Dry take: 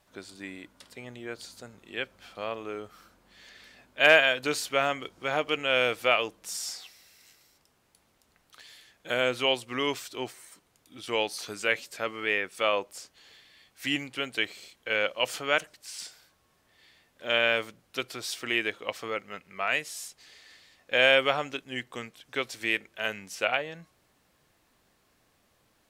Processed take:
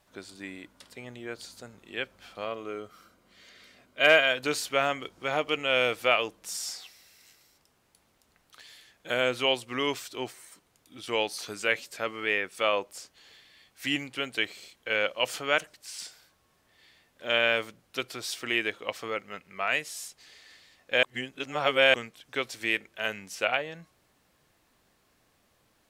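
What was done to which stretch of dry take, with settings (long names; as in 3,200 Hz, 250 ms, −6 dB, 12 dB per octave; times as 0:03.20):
0:02.45–0:04.30: notch comb filter 870 Hz
0:05.28–0:05.93: notch filter 1,600 Hz
0:21.03–0:21.94: reverse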